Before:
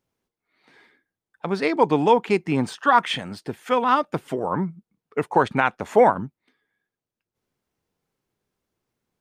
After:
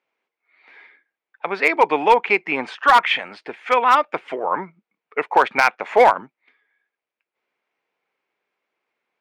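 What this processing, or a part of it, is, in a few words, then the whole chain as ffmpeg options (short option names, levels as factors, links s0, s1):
megaphone: -af "highpass=550,lowpass=2900,equalizer=f=2300:t=o:w=0.48:g=9,asoftclip=type=hard:threshold=0.282,volume=1.88"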